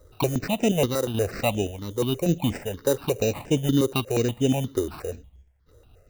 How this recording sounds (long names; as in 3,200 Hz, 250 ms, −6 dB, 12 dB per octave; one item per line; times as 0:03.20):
sample-and-hold tremolo
aliases and images of a low sample rate 3,300 Hz, jitter 0%
notches that jump at a steady rate 8.4 Hz 710–4,200 Hz